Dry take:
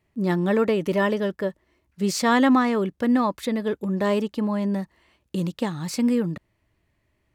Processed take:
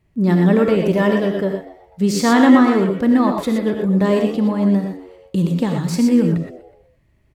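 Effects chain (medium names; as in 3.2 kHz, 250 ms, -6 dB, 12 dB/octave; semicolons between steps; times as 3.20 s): bass shelf 230 Hz +10.5 dB; frequency-shifting echo 123 ms, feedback 44%, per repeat +86 Hz, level -17 dB; gated-style reverb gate 140 ms rising, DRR 2.5 dB; trim +1.5 dB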